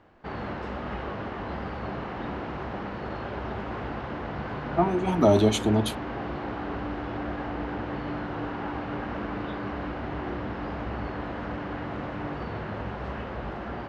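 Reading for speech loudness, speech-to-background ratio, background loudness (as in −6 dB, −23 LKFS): −24.0 LKFS, 10.0 dB, −34.0 LKFS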